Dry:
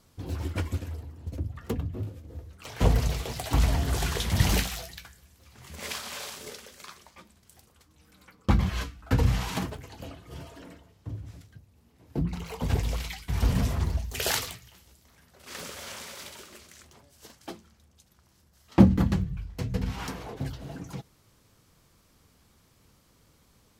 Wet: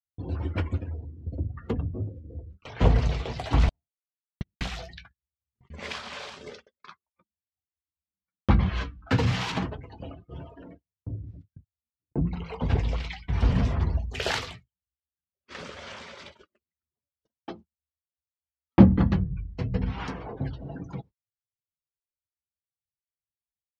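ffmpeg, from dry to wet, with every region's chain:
-filter_complex "[0:a]asettb=1/sr,asplit=3[a][b][c];[a]atrim=end=3.694[d];[b]atrim=start=3.69:end=4.61,asetpts=PTS-STARTPTS,afade=t=in:d=0.004:c=qsin,afade=t=out:st=0.916:d=0.004:c=qsin,aeval=exprs='val(0)+0.5*0.0335*sgn(val(0))':c=same,agate=range=-57dB:threshold=-15dB:ratio=16:release=100:detection=peak[e];[c]atrim=start=4.606[f];[d][e]acrossfade=d=0.004:c1=hsin:c2=qsin[g];[g][f]acrossfade=d=0.004:c1=qsin:c2=hsin,asettb=1/sr,asplit=3[h][i][j];[h]atrim=end=9.074[k];[i]atrim=start=9.07:end=9.52,asetpts=PTS-STARTPTS,afade=t=in:d=0.004:c=qsin,afade=t=out:st=0.446:d=0.004:c=qsin,highpass=f=95:w=0.5412,highpass=f=95:w=1.3066,highshelf=f=2.1k:g=9[l];[j]atrim=start=9.516[m];[k][l]acrossfade=d=0.004:c1=hsin:c2=qsin[n];[n][m]acrossfade=d=0.004:c1=qsin:c2=hsin,afftdn=nr=24:nf=-48,lowpass=3.8k,agate=range=-39dB:threshold=-48dB:ratio=16:detection=peak,volume=2dB"

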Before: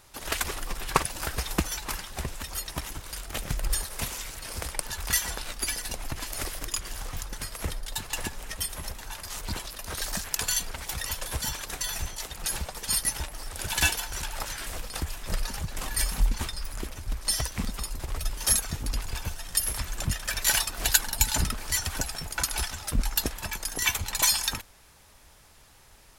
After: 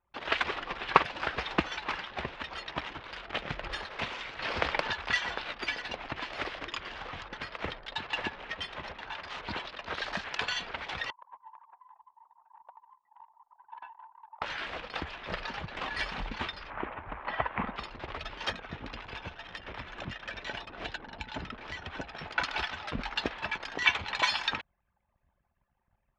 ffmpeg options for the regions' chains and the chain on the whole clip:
-filter_complex "[0:a]asettb=1/sr,asplit=3[a][b][c];[a]atrim=end=4.394[d];[b]atrim=start=4.39:end=4.93,asetpts=PTS-STARTPTS,afade=t=in:d=0.004:c=qsin,afade=t=out:st=0.536:d=0.004:c=qsin,lowpass=8k,acontrast=73[e];[c]atrim=start=4.926[f];[d][e]acrossfade=d=0.004:c1=hsin:c2=qsin[g];[g][f]acrossfade=d=0.004:c1=qsin:c2=hsin,asettb=1/sr,asplit=3[h][i][j];[h]atrim=end=11.104[k];[i]atrim=start=11.1:end=14.42,asetpts=PTS-STARTPTS,afade=t=in:d=0.004:c=qsin,afade=t=out:st=3.316:d=0.004:c=qsin,acompressor=threshold=-35dB:ratio=2:attack=3.2:release=140:knee=1:detection=peak,bandpass=f=970:t=q:w=7,aecho=1:1:96:0.178,atrim=end_sample=146412[l];[j]atrim=start=14.416[m];[k][l]acrossfade=d=0.004:c1=hsin:c2=qsin[n];[n][m]acrossfade=d=0.004:c1=qsin:c2=hsin,asettb=1/sr,asplit=3[o][p][q];[o]atrim=end=16.704[r];[p]atrim=start=16.7:end=17.76,asetpts=PTS-STARTPTS,afade=t=in:d=0.004:c=qsin,afade=t=out:st=1.056:d=0.004:c=qsin,lowpass=f=2.5k:w=0.5412,lowpass=f=2.5k:w=1.3066,equalizer=f=930:w=1.2:g=8.5[s];[q]atrim=start=17.756[t];[r][s]acrossfade=d=0.004:c1=hsin:c2=qsin[u];[u][t]acrossfade=d=0.004:c1=qsin:c2=hsin,asettb=1/sr,asplit=3[v][w][x];[v]atrim=end=18.504[y];[w]atrim=start=18.5:end=22.19,asetpts=PTS-STARTPTS,afade=t=in:d=0.004:c=qsin,afade=t=out:st=3.686:d=0.004:c=qsin,acrusher=bits=9:mode=log:mix=0:aa=0.000001,bandreject=f=4.5k:w=16,acrossover=split=560|4000[z][aa][ab];[z]acompressor=threshold=-29dB:ratio=4[ac];[aa]acompressor=threshold=-44dB:ratio=4[ad];[ab]acompressor=threshold=-39dB:ratio=4[ae];[ac][ad][ae]amix=inputs=3:normalize=0[af];[x]atrim=start=22.186[ag];[y][af]acrossfade=d=0.004:c1=hsin:c2=qsin[ah];[ah][ag]acrossfade=d=0.004:c1=qsin:c2=hsin,lowpass=f=3.4k:w=0.5412,lowpass=f=3.4k:w=1.3066,anlmdn=0.00631,highpass=f=410:p=1,volume=3.5dB"

